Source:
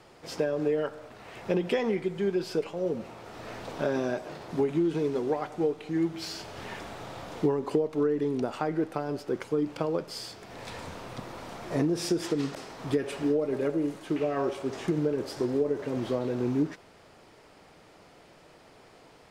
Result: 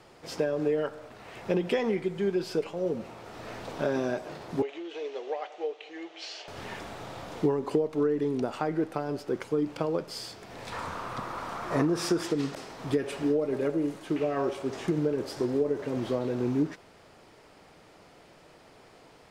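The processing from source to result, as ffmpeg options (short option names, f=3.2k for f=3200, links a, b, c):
-filter_complex "[0:a]asettb=1/sr,asplit=3[a][b][c];[a]atrim=end=4.624[d];[b]atrim=start=4.62:end=6.48,asetpts=PTS-STARTPTS,afade=t=in:d=0.004:c=qsin,afade=t=out:st=1.856:d=0.004:c=qsin,highpass=f=500:w=0.5412,highpass=f=500:w=1.3066,equalizer=f=980:t=q:w=4:g=-7,equalizer=f=1.4k:t=q:w=4:g=-7,equalizer=f=2.9k:t=q:w=4:g=5,equalizer=f=4.9k:t=q:w=4:g=-5,lowpass=f=6k:w=0.5412,lowpass=f=6k:w=1.3066[e];[c]atrim=start=6.476[f];[d][e]acrossfade=d=0.004:c1=hsin:c2=qsin[g];[g][f]acrossfade=d=0.004:c1=qsin:c2=hsin,asettb=1/sr,asplit=3[h][i][j];[h]atrim=end=10.724[k];[i]atrim=start=10.72:end=12.23,asetpts=PTS-STARTPTS,afade=t=in:d=0.004:c=qsin,afade=t=out:st=1.506:d=0.004:c=qsin,equalizer=f=1.2k:t=o:w=0.94:g=12[l];[j]atrim=start=12.226[m];[k][l]acrossfade=d=0.004:c1=hsin:c2=qsin[n];[n][m]acrossfade=d=0.004:c1=qsin:c2=hsin"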